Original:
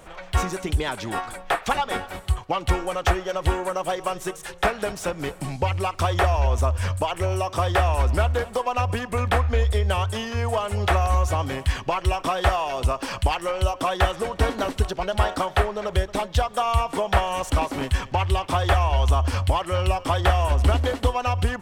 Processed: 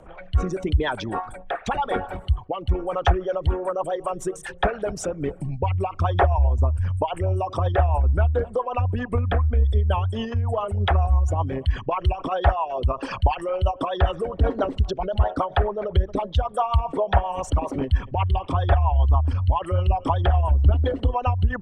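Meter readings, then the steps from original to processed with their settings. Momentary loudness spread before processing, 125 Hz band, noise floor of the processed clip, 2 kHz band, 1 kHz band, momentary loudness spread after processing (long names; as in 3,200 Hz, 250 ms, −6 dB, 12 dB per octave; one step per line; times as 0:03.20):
6 LU, +2.0 dB, −41 dBFS, −5.0 dB, −1.5 dB, 7 LU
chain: spectral envelope exaggerated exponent 2
rotating-speaker cabinet horn 0.85 Hz, later 7.5 Hz, at 0:02.79
level +3 dB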